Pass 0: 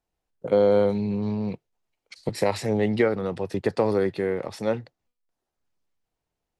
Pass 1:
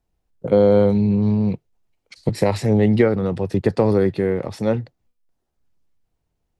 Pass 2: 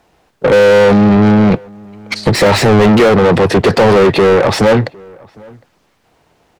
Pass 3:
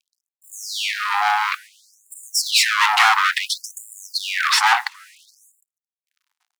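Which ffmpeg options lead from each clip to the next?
ffmpeg -i in.wav -af "lowshelf=frequency=270:gain=11.5,volume=1.5dB" out.wav
ffmpeg -i in.wav -filter_complex "[0:a]asplit=2[link_01][link_02];[link_02]highpass=frequency=720:poles=1,volume=37dB,asoftclip=type=tanh:threshold=-2.5dB[link_03];[link_01][link_03]amix=inputs=2:normalize=0,lowpass=frequency=2200:poles=1,volume=-6dB,asplit=2[link_04][link_05];[link_05]adelay=758,volume=-26dB,highshelf=frequency=4000:gain=-17.1[link_06];[link_04][link_06]amix=inputs=2:normalize=0,volume=1.5dB" out.wav
ffmpeg -i in.wav -af "acrusher=bits=6:mix=0:aa=0.5,afftfilt=real='re*gte(b*sr/1024,700*pow(7100/700,0.5+0.5*sin(2*PI*0.58*pts/sr)))':imag='im*gte(b*sr/1024,700*pow(7100/700,0.5+0.5*sin(2*PI*0.58*pts/sr)))':win_size=1024:overlap=0.75,volume=3dB" out.wav

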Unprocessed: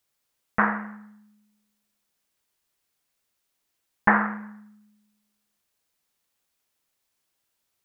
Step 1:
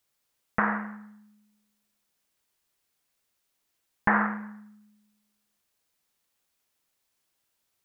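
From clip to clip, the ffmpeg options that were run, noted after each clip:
ffmpeg -i in.wav -af "alimiter=limit=-9.5dB:level=0:latency=1:release=139" out.wav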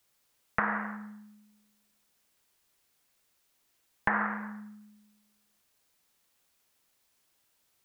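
ffmpeg -i in.wav -filter_complex "[0:a]acrossover=split=400|1600[link_01][link_02][link_03];[link_01]acompressor=threshold=-44dB:ratio=4[link_04];[link_02]acompressor=threshold=-35dB:ratio=4[link_05];[link_03]acompressor=threshold=-38dB:ratio=4[link_06];[link_04][link_05][link_06]amix=inputs=3:normalize=0,volume=4.5dB" out.wav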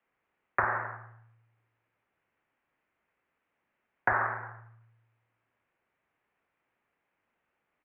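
ffmpeg -i in.wav -filter_complex "[0:a]acrossover=split=210[link_01][link_02];[link_01]adelay=40[link_03];[link_03][link_02]amix=inputs=2:normalize=0,highpass=frequency=150:width_type=q:width=0.5412,highpass=frequency=150:width_type=q:width=1.307,lowpass=frequency=2500:width_type=q:width=0.5176,lowpass=frequency=2500:width_type=q:width=0.7071,lowpass=frequency=2500:width_type=q:width=1.932,afreqshift=-96,volume=1.5dB" out.wav

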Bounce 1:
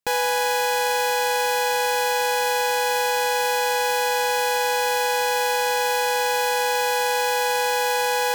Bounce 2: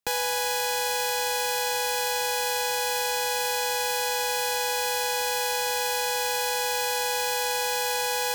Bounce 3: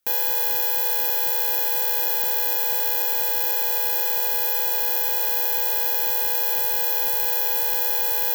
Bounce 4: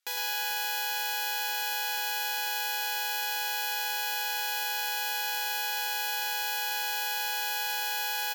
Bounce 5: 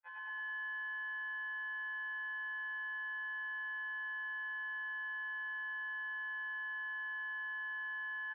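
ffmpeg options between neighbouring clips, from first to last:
ffmpeg -i in.wav -filter_complex "[0:a]acrossover=split=150|3000[link_01][link_02][link_03];[link_02]acompressor=threshold=-39dB:ratio=1.5[link_04];[link_01][link_04][link_03]amix=inputs=3:normalize=0" out.wav
ffmpeg -i in.wav -af "lowshelf=frequency=96:gain=-5,aexciter=amount=8.9:drive=3.8:freq=12000,acrusher=bits=10:mix=0:aa=0.000001,volume=-4.5dB" out.wav
ffmpeg -i in.wav -filter_complex "[0:a]bandpass=frequency=3300:width_type=q:width=0.55:csg=0,asplit=2[link_01][link_02];[link_02]aecho=0:1:106|212|318|424|530|636|742:0.631|0.341|0.184|0.0994|0.0537|0.029|0.0156[link_03];[link_01][link_03]amix=inputs=2:normalize=0" out.wav
ffmpeg -i in.wav -af "aecho=1:1:96.21|224.5:0.501|0.398,highpass=frequency=560:width_type=q:width=0.5412,highpass=frequency=560:width_type=q:width=1.307,lowpass=frequency=2000:width_type=q:width=0.5176,lowpass=frequency=2000:width_type=q:width=0.7071,lowpass=frequency=2000:width_type=q:width=1.932,afreqshift=54,afftfilt=real='re*2*eq(mod(b,4),0)':imag='im*2*eq(mod(b,4),0)':win_size=2048:overlap=0.75,volume=-7dB" out.wav

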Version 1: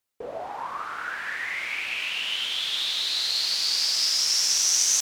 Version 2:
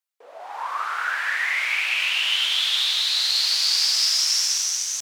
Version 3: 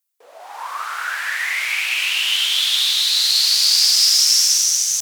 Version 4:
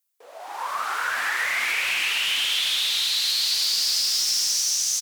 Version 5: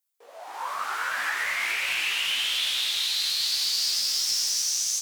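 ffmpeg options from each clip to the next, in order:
ffmpeg -i in.wav -af "highpass=770,dynaudnorm=framelen=120:gausssize=9:maxgain=13.5dB,volume=-6dB" out.wav
ffmpeg -i in.wav -af "crystalizer=i=2.5:c=0,volume=-1dB" out.wav
ffmpeg -i in.wav -filter_complex "[0:a]asoftclip=type=tanh:threshold=-11.5dB,acompressor=threshold=-22dB:ratio=6,asplit=2[link_01][link_02];[link_02]asplit=7[link_03][link_04][link_05][link_06][link_07][link_08][link_09];[link_03]adelay=271,afreqshift=-140,volume=-8dB[link_10];[link_04]adelay=542,afreqshift=-280,volume=-12.7dB[link_11];[link_05]adelay=813,afreqshift=-420,volume=-17.5dB[link_12];[link_06]adelay=1084,afreqshift=-560,volume=-22.2dB[link_13];[link_07]adelay=1355,afreqshift=-700,volume=-26.9dB[link_14];[link_08]adelay=1626,afreqshift=-840,volume=-31.7dB[link_15];[link_09]adelay=1897,afreqshift=-980,volume=-36.4dB[link_16];[link_10][link_11][link_12][link_13][link_14][link_15][link_16]amix=inputs=7:normalize=0[link_17];[link_01][link_17]amix=inputs=2:normalize=0" out.wav
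ffmpeg -i in.wav -af "flanger=delay=16:depth=3.1:speed=0.78" out.wav

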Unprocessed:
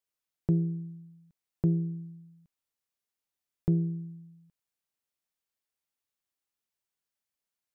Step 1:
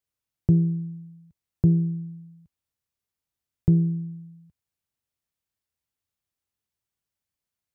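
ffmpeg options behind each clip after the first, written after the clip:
ffmpeg -i in.wav -af "equalizer=frequency=80:width_type=o:width=2.2:gain=14" out.wav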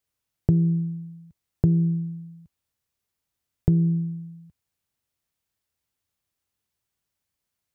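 ffmpeg -i in.wav -af "acompressor=threshold=-21dB:ratio=6,volume=5dB" out.wav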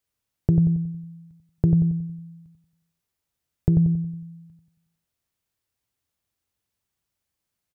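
ffmpeg -i in.wav -filter_complex "[0:a]asplit=2[link_01][link_02];[link_02]adelay=91,lowpass=frequency=800:poles=1,volume=-4dB,asplit=2[link_03][link_04];[link_04]adelay=91,lowpass=frequency=800:poles=1,volume=0.47,asplit=2[link_05][link_06];[link_06]adelay=91,lowpass=frequency=800:poles=1,volume=0.47,asplit=2[link_07][link_08];[link_08]adelay=91,lowpass=frequency=800:poles=1,volume=0.47,asplit=2[link_09][link_10];[link_10]adelay=91,lowpass=frequency=800:poles=1,volume=0.47,asplit=2[link_11][link_12];[link_12]adelay=91,lowpass=frequency=800:poles=1,volume=0.47[link_13];[link_01][link_03][link_05][link_07][link_09][link_11][link_13]amix=inputs=7:normalize=0" out.wav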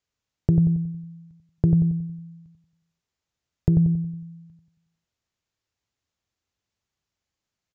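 ffmpeg -i in.wav -af "aresample=16000,aresample=44100" out.wav

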